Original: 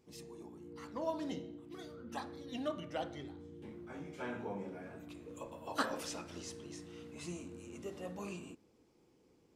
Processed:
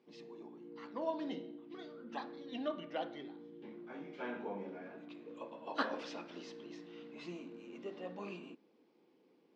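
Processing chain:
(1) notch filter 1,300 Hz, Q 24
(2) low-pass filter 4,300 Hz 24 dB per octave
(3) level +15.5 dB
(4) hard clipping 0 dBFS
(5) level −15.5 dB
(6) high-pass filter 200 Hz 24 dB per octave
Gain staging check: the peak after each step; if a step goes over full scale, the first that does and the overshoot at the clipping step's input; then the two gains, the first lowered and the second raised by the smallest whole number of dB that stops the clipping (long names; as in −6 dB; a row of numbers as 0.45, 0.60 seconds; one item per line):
−20.5, −20.5, −5.0, −5.0, −20.5, −19.0 dBFS
no step passes full scale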